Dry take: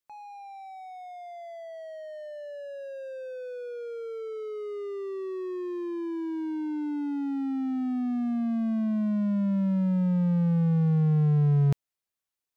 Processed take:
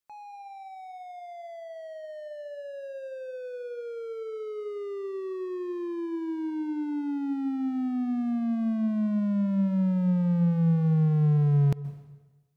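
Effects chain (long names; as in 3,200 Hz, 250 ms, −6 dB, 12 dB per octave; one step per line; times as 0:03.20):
dense smooth reverb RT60 1.2 s, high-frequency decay 0.85×, pre-delay 115 ms, DRR 15 dB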